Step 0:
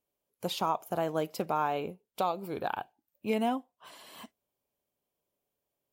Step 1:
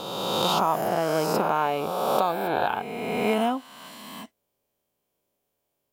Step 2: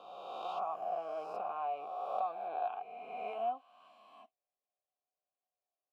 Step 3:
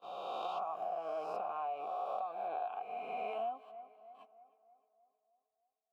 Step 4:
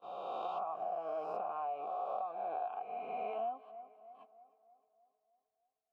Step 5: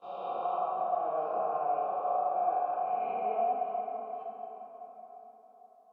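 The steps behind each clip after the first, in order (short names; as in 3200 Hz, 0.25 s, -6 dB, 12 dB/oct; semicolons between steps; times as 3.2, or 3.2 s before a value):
spectral swells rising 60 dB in 1.96 s; gain +3.5 dB
vowel filter a; flange 1.3 Hz, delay 0.6 ms, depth 2.5 ms, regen -57%; gain -3 dB
gate -55 dBFS, range -24 dB; tape echo 0.309 s, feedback 57%, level -19.5 dB, low-pass 2300 Hz; compressor, threshold -40 dBFS, peak gain reduction 9.5 dB; gain +4.5 dB
high shelf 2700 Hz -12 dB; gain +1 dB
treble ducked by the level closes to 2000 Hz, closed at -36.5 dBFS; plate-style reverb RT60 4.8 s, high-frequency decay 0.5×, pre-delay 0 ms, DRR -1 dB; harmonic-percussive split harmonic +5 dB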